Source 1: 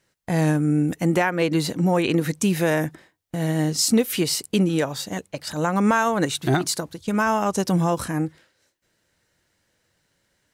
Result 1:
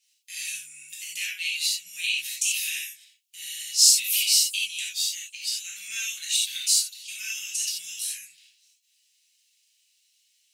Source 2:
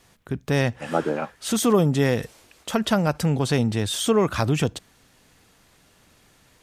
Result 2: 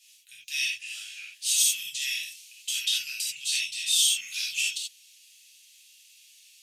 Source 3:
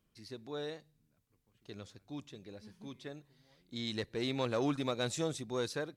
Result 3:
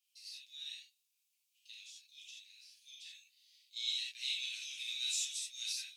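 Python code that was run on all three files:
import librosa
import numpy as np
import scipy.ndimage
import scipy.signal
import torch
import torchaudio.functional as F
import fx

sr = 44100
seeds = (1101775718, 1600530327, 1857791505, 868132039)

y = scipy.signal.sosfilt(scipy.signal.ellip(4, 1.0, 60, 2600.0, 'highpass', fs=sr, output='sos'), x)
y = fx.rev_gated(y, sr, seeds[0], gate_ms=110, shape='flat', drr_db=-6.0)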